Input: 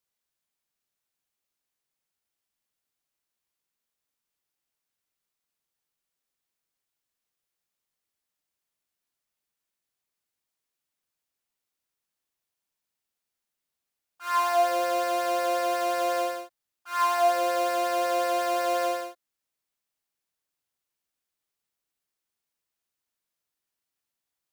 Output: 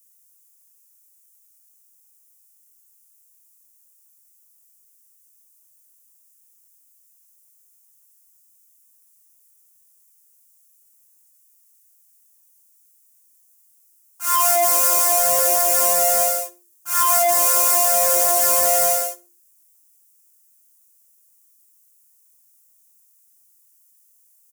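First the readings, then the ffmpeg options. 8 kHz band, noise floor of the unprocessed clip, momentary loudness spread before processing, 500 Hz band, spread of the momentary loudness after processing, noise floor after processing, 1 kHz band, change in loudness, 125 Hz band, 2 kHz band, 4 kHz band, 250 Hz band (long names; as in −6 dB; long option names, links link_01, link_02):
+24.0 dB, below −85 dBFS, 9 LU, +3.0 dB, 7 LU, −58 dBFS, +3.5 dB, +11.0 dB, can't be measured, +4.0 dB, +8.5 dB, −5.5 dB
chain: -filter_complex "[0:a]bandreject=frequency=50:width_type=h:width=6,bandreject=frequency=100:width_type=h:width=6,bandreject=frequency=150:width_type=h:width=6,bandreject=frequency=200:width_type=h:width=6,bandreject=frequency=250:width_type=h:width=6,bandreject=frequency=300:width_type=h:width=6,bandreject=frequency=350:width_type=h:width=6,flanger=delay=18.5:depth=3.6:speed=0.37,asoftclip=type=tanh:threshold=-24.5dB,aexciter=amount=12.7:drive=4.3:freq=5800,asplit=2[link_01][link_02];[link_02]aecho=0:1:65|130:0.1|0.027[link_03];[link_01][link_03]amix=inputs=2:normalize=0,volume=8.5dB"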